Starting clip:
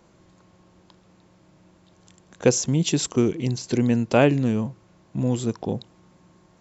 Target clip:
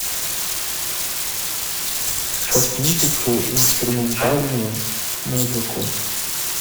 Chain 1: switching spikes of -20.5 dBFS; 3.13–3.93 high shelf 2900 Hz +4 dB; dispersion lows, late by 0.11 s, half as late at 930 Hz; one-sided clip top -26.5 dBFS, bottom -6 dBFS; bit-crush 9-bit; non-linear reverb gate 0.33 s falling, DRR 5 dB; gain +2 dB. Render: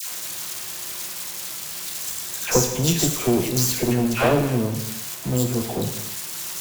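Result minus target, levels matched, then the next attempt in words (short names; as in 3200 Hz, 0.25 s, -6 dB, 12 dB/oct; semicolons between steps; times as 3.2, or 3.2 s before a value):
switching spikes: distortion -9 dB
switching spikes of -11 dBFS; 3.13–3.93 high shelf 2900 Hz +4 dB; dispersion lows, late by 0.11 s, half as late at 930 Hz; one-sided clip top -26.5 dBFS, bottom -6 dBFS; bit-crush 9-bit; non-linear reverb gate 0.33 s falling, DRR 5 dB; gain +2 dB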